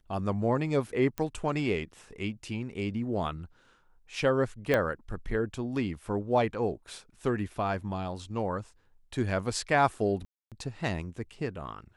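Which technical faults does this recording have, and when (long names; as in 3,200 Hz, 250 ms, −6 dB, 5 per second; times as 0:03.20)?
0:01.18: click −19 dBFS
0:04.74: click −13 dBFS
0:10.25–0:10.52: drop-out 267 ms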